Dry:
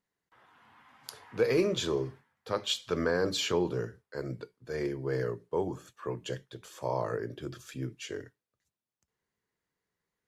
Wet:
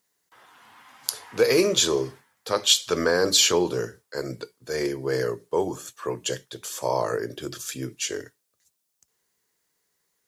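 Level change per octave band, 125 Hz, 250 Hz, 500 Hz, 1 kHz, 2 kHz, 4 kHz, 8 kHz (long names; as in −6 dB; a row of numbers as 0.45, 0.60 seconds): +1.0, +5.0, +7.0, +7.5, +8.0, +12.5, +18.0 decibels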